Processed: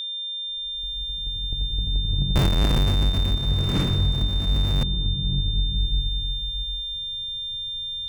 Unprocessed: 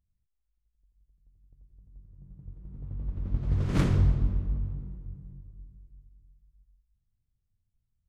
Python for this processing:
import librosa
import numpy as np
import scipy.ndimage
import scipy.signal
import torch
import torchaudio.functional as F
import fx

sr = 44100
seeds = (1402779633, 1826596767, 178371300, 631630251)

y = fx.zero_step(x, sr, step_db=-30.0, at=(2.35, 4.84))
y = fx.recorder_agc(y, sr, target_db=-15.0, rise_db_per_s=35.0, max_gain_db=30)
y = y + 10.0 ** (-27.0 / 20.0) * np.sin(2.0 * np.pi * 3600.0 * np.arange(len(y)) / sr)
y = F.gain(torch.from_numpy(y), -1.0).numpy()